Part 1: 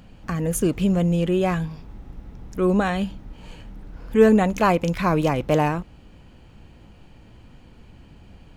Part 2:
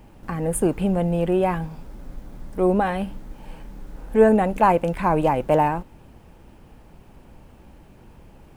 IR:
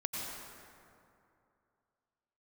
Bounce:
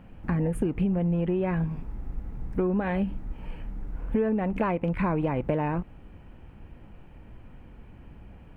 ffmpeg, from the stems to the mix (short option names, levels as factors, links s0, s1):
-filter_complex "[0:a]lowpass=f=2500:w=0.5412,lowpass=f=2500:w=1.3066,volume=0.841[s0];[1:a]afwtdn=0.0398,acompressor=threshold=0.0794:ratio=6,volume=1.06[s1];[s0][s1]amix=inputs=2:normalize=0,acompressor=threshold=0.0794:ratio=12"